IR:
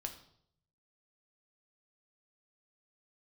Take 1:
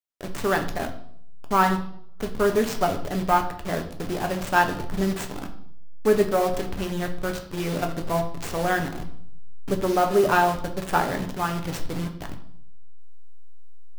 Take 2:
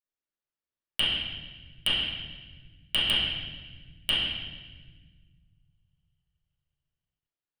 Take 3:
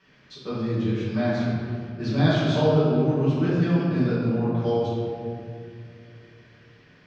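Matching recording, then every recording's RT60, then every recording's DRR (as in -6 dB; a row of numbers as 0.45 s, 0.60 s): 1; 0.65 s, 1.3 s, 2.5 s; 4.0 dB, -13.5 dB, -12.5 dB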